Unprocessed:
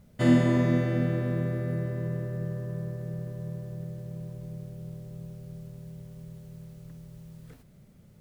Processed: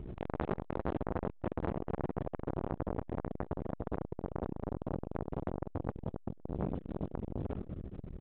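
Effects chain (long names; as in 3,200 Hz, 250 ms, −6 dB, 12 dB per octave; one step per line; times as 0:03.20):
running median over 25 samples
0:06.55–0:07.13: elliptic band-stop filter 410–1,100 Hz
linear-prediction vocoder at 8 kHz whisper
parametric band 130 Hz −3.5 dB 0.35 octaves
single-tap delay 548 ms −23 dB
convolution reverb RT60 1.3 s, pre-delay 3 ms, DRR 3.5 dB
downward compressor 12 to 1, threshold −37 dBFS, peak gain reduction 24 dB
0:00.99–0:01.71: reverse
saturating transformer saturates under 1,300 Hz
level +15 dB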